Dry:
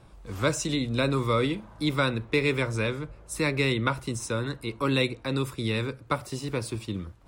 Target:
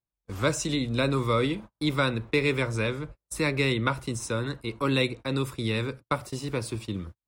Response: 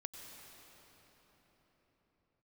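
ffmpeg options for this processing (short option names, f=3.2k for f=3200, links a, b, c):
-af "agate=range=-42dB:threshold=-39dB:ratio=16:detection=peak"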